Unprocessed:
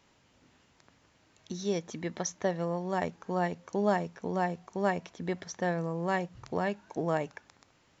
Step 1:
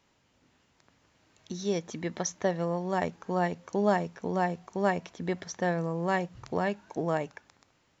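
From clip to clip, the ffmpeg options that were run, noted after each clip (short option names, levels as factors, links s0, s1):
-af "dynaudnorm=f=360:g=7:m=1.88,volume=0.668"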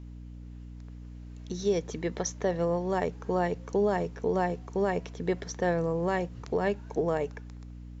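-af "equalizer=f=440:w=3.9:g=10,alimiter=limit=0.141:level=0:latency=1:release=90,aeval=exprs='val(0)+0.00794*(sin(2*PI*60*n/s)+sin(2*PI*2*60*n/s)/2+sin(2*PI*3*60*n/s)/3+sin(2*PI*4*60*n/s)/4+sin(2*PI*5*60*n/s)/5)':c=same"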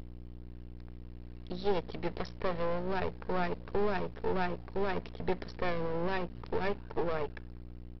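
-af "acompressor=mode=upward:threshold=0.00631:ratio=2.5,aresample=11025,aeval=exprs='max(val(0),0)':c=same,aresample=44100,volume=1.12"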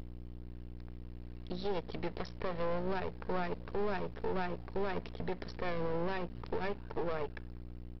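-af "alimiter=limit=0.0631:level=0:latency=1:release=174"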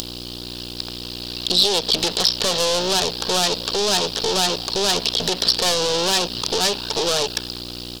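-filter_complex "[0:a]asplit=2[s0][s1];[s1]highpass=f=720:p=1,volume=14.1,asoftclip=type=tanh:threshold=0.0668[s2];[s0][s2]amix=inputs=2:normalize=0,lowpass=f=3700:p=1,volume=0.501,acrossover=split=3100[s3][s4];[s4]acompressor=threshold=0.00316:ratio=4:attack=1:release=60[s5];[s3][s5]amix=inputs=2:normalize=0,aexciter=amount=12.8:drive=8.9:freq=3300,volume=2.51"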